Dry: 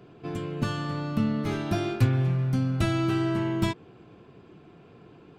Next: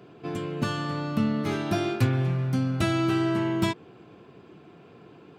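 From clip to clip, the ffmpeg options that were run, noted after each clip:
-af "highpass=f=150:p=1,volume=2.5dB"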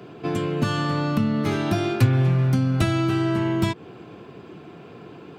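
-filter_complex "[0:a]acrossover=split=130[a][b];[b]acompressor=threshold=-29dB:ratio=6[c];[a][c]amix=inputs=2:normalize=0,volume=8dB"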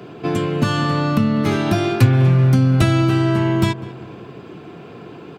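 -filter_complex "[0:a]asplit=2[a][b];[b]adelay=199,lowpass=f=2.1k:p=1,volume=-16.5dB,asplit=2[c][d];[d]adelay=199,lowpass=f=2.1k:p=1,volume=0.52,asplit=2[e][f];[f]adelay=199,lowpass=f=2.1k:p=1,volume=0.52,asplit=2[g][h];[h]adelay=199,lowpass=f=2.1k:p=1,volume=0.52,asplit=2[i][j];[j]adelay=199,lowpass=f=2.1k:p=1,volume=0.52[k];[a][c][e][g][i][k]amix=inputs=6:normalize=0,volume=5dB"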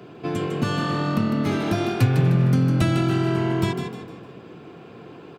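-filter_complex "[0:a]asplit=5[a][b][c][d][e];[b]adelay=153,afreqshift=43,volume=-7dB[f];[c]adelay=306,afreqshift=86,volume=-15.4dB[g];[d]adelay=459,afreqshift=129,volume=-23.8dB[h];[e]adelay=612,afreqshift=172,volume=-32.2dB[i];[a][f][g][h][i]amix=inputs=5:normalize=0,volume=-6dB"

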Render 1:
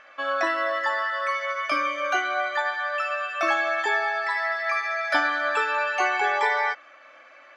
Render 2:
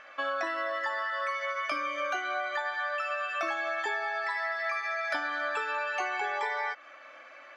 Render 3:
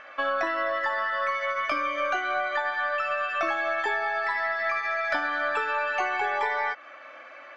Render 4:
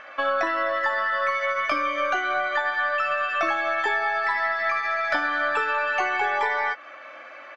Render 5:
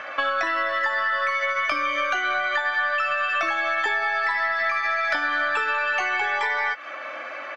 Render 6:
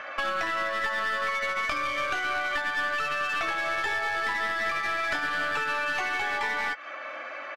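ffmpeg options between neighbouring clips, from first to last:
-af "acompressor=threshold=-29dB:ratio=6"
-af "aeval=exprs='0.133*(cos(1*acos(clip(val(0)/0.133,-1,1)))-cos(1*PI/2))+0.00335*(cos(4*acos(clip(val(0)/0.133,-1,1)))-cos(4*PI/2))':c=same,aemphasis=mode=reproduction:type=50kf,volume=5.5dB"
-filter_complex "[0:a]asplit=2[a][b];[b]adelay=13,volume=-12.5dB[c];[a][c]amix=inputs=2:normalize=0,volume=3dB"
-filter_complex "[0:a]acrossover=split=120|1400[a][b][c];[a]acompressor=threshold=-58dB:ratio=4[d];[b]acompressor=threshold=-39dB:ratio=4[e];[c]acompressor=threshold=-32dB:ratio=4[f];[d][e][f]amix=inputs=3:normalize=0,volume=8dB"
-af "aeval=exprs='clip(val(0),-1,0.0562)':c=same,aresample=32000,aresample=44100,volume=-3.5dB"

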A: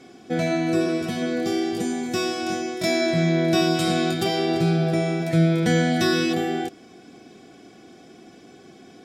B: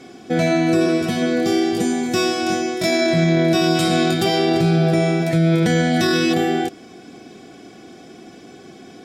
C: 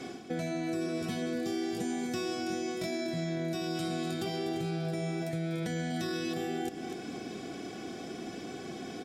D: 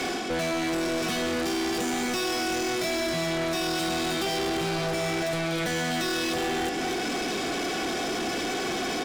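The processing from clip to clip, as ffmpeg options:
-af "alimiter=limit=-15dB:level=0:latency=1:release=17,volume=6dB"
-filter_complex "[0:a]areverse,acompressor=threshold=-28dB:ratio=4,areverse,aecho=1:1:244:0.237,acrossover=split=410|5900[a][b][c];[a]acompressor=threshold=-34dB:ratio=4[d];[b]acompressor=threshold=-39dB:ratio=4[e];[c]acompressor=threshold=-50dB:ratio=4[f];[d][e][f]amix=inputs=3:normalize=0"
-filter_complex "[0:a]asplit=2[a][b];[b]highpass=f=720:p=1,volume=31dB,asoftclip=type=tanh:threshold=-21.5dB[c];[a][c]amix=inputs=2:normalize=0,lowpass=f=6.9k:p=1,volume=-6dB"

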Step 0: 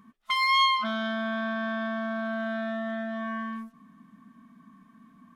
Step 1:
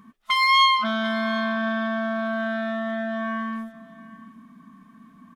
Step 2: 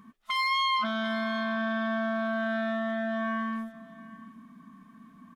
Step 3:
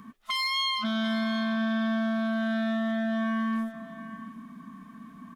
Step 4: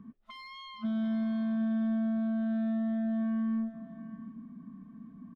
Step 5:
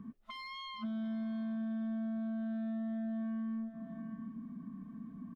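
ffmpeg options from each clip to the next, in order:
-af "aecho=1:1:738:0.119,volume=5dB"
-af "alimiter=limit=-19dB:level=0:latency=1,volume=-2.5dB"
-filter_complex "[0:a]acrossover=split=310|3000[a][b][c];[b]acompressor=threshold=-39dB:ratio=6[d];[a][d][c]amix=inputs=3:normalize=0,volume=6dB"
-af "firequalizer=gain_entry='entry(130,0);entry(1100,-16);entry(7600,-30)':delay=0.05:min_phase=1"
-af "acompressor=threshold=-43dB:ratio=2.5,volume=2dB"

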